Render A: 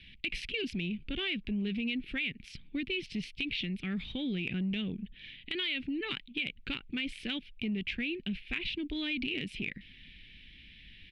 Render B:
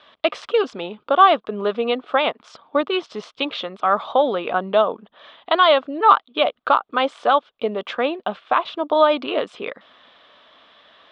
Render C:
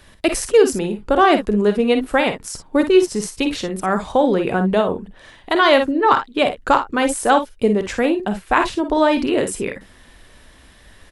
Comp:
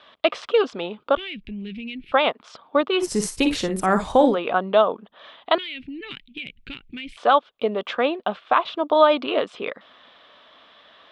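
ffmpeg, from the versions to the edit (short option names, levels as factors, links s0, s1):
-filter_complex "[0:a]asplit=2[s0][s1];[1:a]asplit=4[s2][s3][s4][s5];[s2]atrim=end=1.172[s6];[s0]atrim=start=1.168:end=2.122[s7];[s3]atrim=start=2.118:end=3.08[s8];[2:a]atrim=start=2.98:end=4.38[s9];[s4]atrim=start=4.28:end=5.582[s10];[s1]atrim=start=5.578:end=7.172[s11];[s5]atrim=start=7.168[s12];[s6][s7]acrossfade=d=0.004:c1=hsin:c2=hsin[s13];[s13][s8]acrossfade=d=0.004:c1=hsin:c2=hsin[s14];[s14][s9]acrossfade=d=0.1:c1=tri:c2=tri[s15];[s15][s10]acrossfade=d=0.1:c1=tri:c2=tri[s16];[s16][s11]acrossfade=d=0.004:c1=hsin:c2=hsin[s17];[s17][s12]acrossfade=d=0.004:c1=hsin:c2=hsin"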